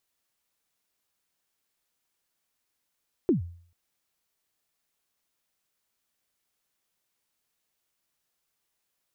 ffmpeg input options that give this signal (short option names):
-f lavfi -i "aevalsrc='0.158*pow(10,-3*t/0.52)*sin(2*PI*(400*0.125/log(86/400)*(exp(log(86/400)*min(t,0.125)/0.125)-1)+86*max(t-0.125,0)))':d=0.44:s=44100"